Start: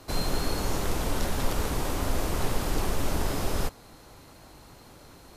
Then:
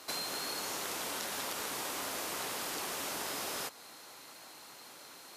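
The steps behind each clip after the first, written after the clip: high-pass 230 Hz 12 dB/octave; tilt shelf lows -6.5 dB, about 800 Hz; compression, threshold -33 dBFS, peak gain reduction 7 dB; trim -2 dB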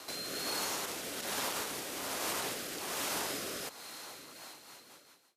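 fade out at the end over 1.15 s; peak limiter -31.5 dBFS, peak gain reduction 10.5 dB; rotary cabinet horn 1.2 Hz, later 6 Hz, at 4.07 s; trim +6.5 dB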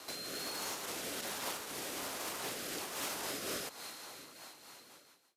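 peak limiter -29 dBFS, peak gain reduction 7 dB; hard clipper -32.5 dBFS, distortion -23 dB; random flutter of the level, depth 60%; trim +2.5 dB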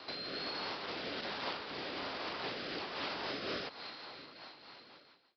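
resampled via 11.025 kHz; trim +2 dB

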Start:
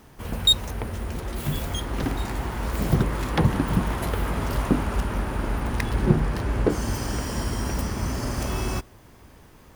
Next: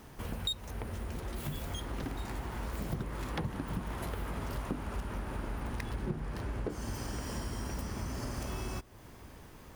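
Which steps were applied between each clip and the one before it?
compression 3:1, threshold -36 dBFS, peak gain reduction 18 dB; trim -1.5 dB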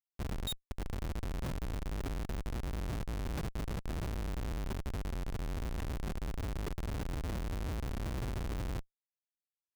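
Schmitt trigger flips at -33 dBFS; trim +2 dB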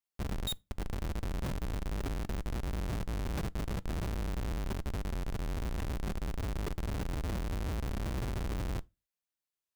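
reverberation RT60 0.25 s, pre-delay 5 ms, DRR 19 dB; trim +2 dB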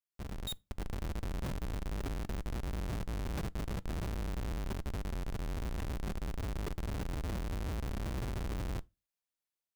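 level rider gain up to 5 dB; trim -7 dB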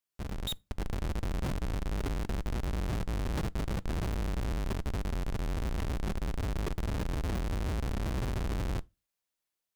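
loudspeaker Doppler distortion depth 0.61 ms; trim +4.5 dB

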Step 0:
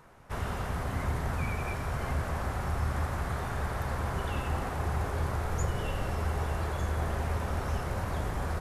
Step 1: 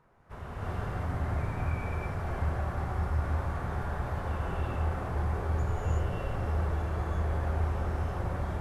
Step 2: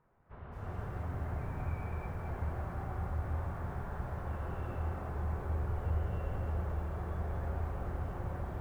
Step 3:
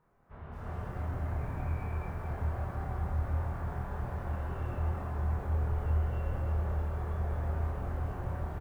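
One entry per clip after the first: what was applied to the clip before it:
treble shelf 3.1 kHz -11.5 dB; gated-style reverb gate 390 ms rising, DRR -7 dB; trim -8.5 dB
distance through air 370 m; bit-crushed delay 222 ms, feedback 55%, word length 9-bit, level -8.5 dB; trim -6 dB
doubling 26 ms -2.5 dB

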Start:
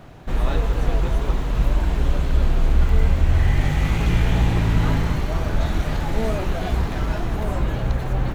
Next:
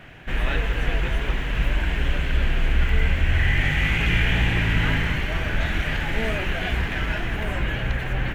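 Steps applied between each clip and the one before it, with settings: high-order bell 2.2 kHz +13 dB 1.3 oct; trim -3.5 dB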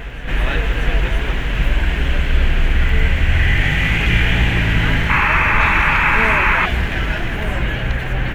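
reverse echo 633 ms -11 dB; painted sound noise, 5.09–6.66 s, 810–2700 Hz -21 dBFS; trim +5 dB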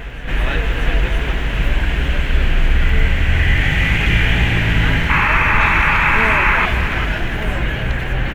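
delay 392 ms -10 dB

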